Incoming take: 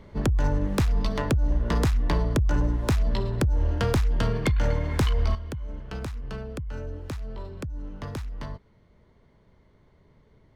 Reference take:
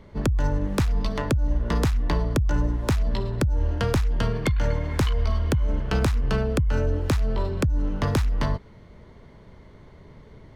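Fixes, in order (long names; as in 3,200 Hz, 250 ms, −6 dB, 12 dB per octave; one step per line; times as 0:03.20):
clipped peaks rebuilt −17 dBFS
level correction +11.5 dB, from 0:05.35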